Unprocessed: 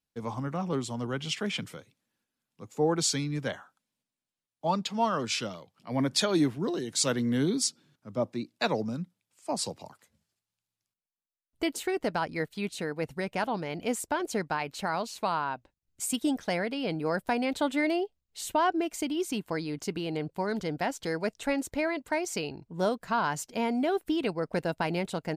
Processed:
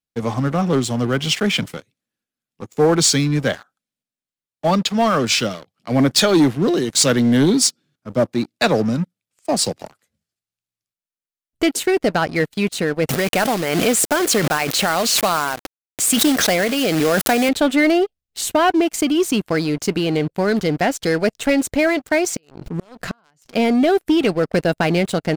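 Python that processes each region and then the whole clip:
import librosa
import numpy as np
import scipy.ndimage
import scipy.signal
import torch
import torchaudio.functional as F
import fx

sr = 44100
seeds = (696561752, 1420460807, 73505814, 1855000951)

y = fx.chain(x, sr, fx.quant_companded(bits=4),
    fx.highpass(hz=230.0, slope=6),
    fx.pre_swell(db_per_s=33.0), at=(13.09, 17.49))
y = fx.chain(y, sr, fx.high_shelf(hz=8500.0, db=-8.0),
    fx.gate_flip(shuts_db=-26.0, range_db=-26),
    fx.pre_swell(db_per_s=58.0), at=(22.3, 23.55))
y = fx.peak_eq(y, sr, hz=940.0, db=-9.5, octaves=0.25)
y = fx.leveller(y, sr, passes=3)
y = y * librosa.db_to_amplitude(2.5)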